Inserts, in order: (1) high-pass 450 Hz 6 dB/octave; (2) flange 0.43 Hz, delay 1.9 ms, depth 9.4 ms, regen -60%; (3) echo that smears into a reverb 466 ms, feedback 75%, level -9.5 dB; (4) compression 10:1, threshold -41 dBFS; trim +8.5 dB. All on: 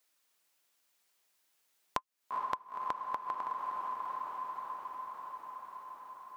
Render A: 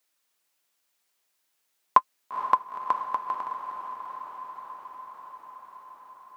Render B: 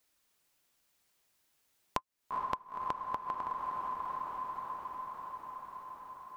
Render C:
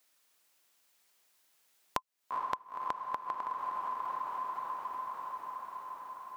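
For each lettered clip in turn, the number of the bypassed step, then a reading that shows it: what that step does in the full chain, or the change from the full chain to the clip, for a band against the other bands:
4, mean gain reduction 3.0 dB; 1, 250 Hz band +4.5 dB; 2, momentary loudness spread change -3 LU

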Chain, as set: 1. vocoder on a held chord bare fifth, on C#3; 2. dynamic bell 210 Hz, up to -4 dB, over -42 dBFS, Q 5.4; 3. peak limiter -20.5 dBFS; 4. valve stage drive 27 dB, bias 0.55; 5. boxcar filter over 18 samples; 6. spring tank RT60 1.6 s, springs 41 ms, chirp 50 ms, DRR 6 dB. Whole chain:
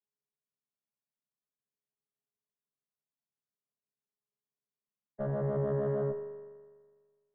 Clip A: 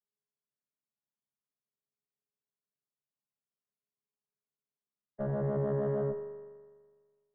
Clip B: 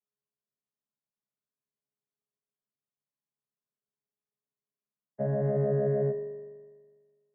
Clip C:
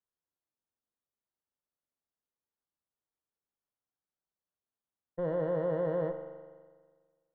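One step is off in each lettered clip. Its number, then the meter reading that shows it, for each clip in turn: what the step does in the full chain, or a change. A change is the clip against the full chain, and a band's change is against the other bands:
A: 2, 250 Hz band +1.5 dB; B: 4, 1 kHz band -2.5 dB; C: 1, 125 Hz band -7.5 dB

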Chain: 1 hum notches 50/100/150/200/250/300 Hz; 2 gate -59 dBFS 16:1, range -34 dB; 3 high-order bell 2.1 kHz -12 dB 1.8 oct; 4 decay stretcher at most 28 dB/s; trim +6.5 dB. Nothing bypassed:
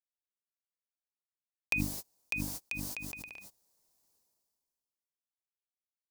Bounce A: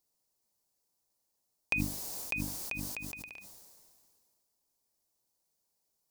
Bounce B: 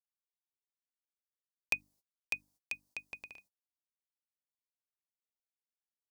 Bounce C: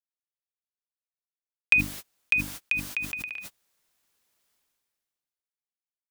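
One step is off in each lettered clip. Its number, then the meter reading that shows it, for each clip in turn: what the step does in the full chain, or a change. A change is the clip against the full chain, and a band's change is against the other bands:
2, momentary loudness spread change +1 LU; 4, crest factor change +5.0 dB; 3, 2 kHz band +11.0 dB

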